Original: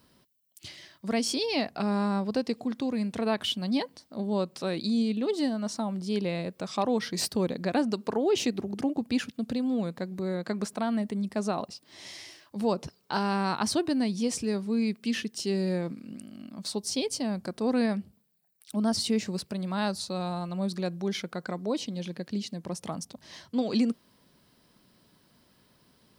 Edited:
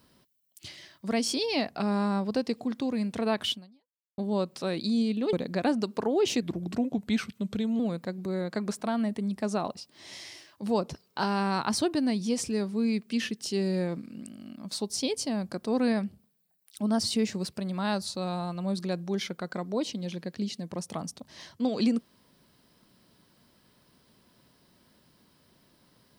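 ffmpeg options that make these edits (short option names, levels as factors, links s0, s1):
-filter_complex "[0:a]asplit=5[s0][s1][s2][s3][s4];[s0]atrim=end=4.18,asetpts=PTS-STARTPTS,afade=t=out:st=3.52:d=0.66:c=exp[s5];[s1]atrim=start=4.18:end=5.332,asetpts=PTS-STARTPTS,afade=t=in:d=0.004:c=hsin[s6];[s2]atrim=start=7.428:end=8.524[s7];[s3]atrim=start=8.52:end=9.73,asetpts=PTS-STARTPTS,asetrate=38808,aresample=44100[s8];[s4]atrim=start=9.726[s9];[s5][s6]concat=n=2:v=0:a=1[s10];[s10][s7]acrossfade=d=0.004:c1=hsin:c2=hsin[s11];[s11][s8]acrossfade=d=0.004:c1=hsin:c2=hsin[s12];[s12][s9]acrossfade=d=0.004:c1=hsin:c2=hsin"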